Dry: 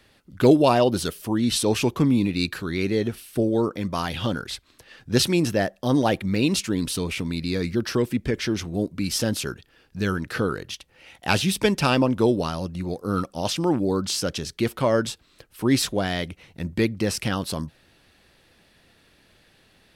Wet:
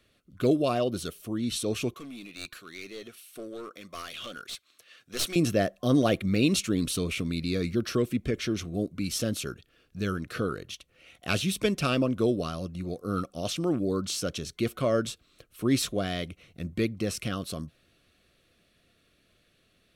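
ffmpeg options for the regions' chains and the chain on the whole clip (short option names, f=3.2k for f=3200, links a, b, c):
-filter_complex "[0:a]asettb=1/sr,asplit=3[a][b][c];[a]atrim=end=1.944[d];[b]atrim=start=1.94:end=5.36,asetpts=PTS-STARTPTS,afade=t=in:d=0.004:c=qsin,afade=t=out:st=3.416:d=0.004:c=qsin,highpass=f=1.3k:p=1,aeval=exprs='clip(val(0),-1,0.0266)':c=same[e];[c]atrim=start=5.356[f];[d][e]acrossfade=d=0.004:c1=hsin:c2=qsin[g];[g][f]acrossfade=d=0.004:c1=qsin:c2=hsin,superequalizer=9b=0.251:11b=0.631,dynaudnorm=f=260:g=31:m=11.5dB,bandreject=f=4.9k:w=11,volume=-8dB"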